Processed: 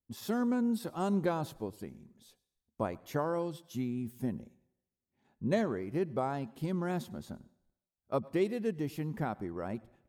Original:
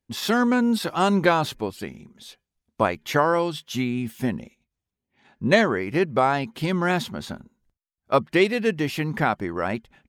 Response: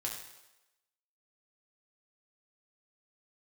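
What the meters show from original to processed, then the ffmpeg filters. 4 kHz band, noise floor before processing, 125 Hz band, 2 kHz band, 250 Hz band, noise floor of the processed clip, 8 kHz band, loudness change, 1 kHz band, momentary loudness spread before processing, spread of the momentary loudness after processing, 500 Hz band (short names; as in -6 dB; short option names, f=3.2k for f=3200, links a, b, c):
-19.5 dB, under -85 dBFS, -9.0 dB, -20.0 dB, -9.5 dB, under -85 dBFS, -14.0 dB, -11.5 dB, -15.0 dB, 12 LU, 11 LU, -11.5 dB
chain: -filter_complex "[0:a]equalizer=f=2.5k:t=o:w=2.8:g=-13,asplit=2[a][b];[1:a]atrim=start_sample=2205,adelay=100[c];[b][c]afir=irnorm=-1:irlink=0,volume=-23dB[d];[a][d]amix=inputs=2:normalize=0,volume=-8.5dB"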